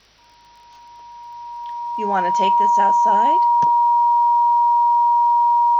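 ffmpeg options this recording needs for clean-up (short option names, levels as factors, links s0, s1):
-af "adeclick=t=4,bandreject=f=51.9:t=h:w=4,bandreject=f=103.8:t=h:w=4,bandreject=f=155.7:t=h:w=4,bandreject=f=950:w=30,agate=range=0.0891:threshold=0.01"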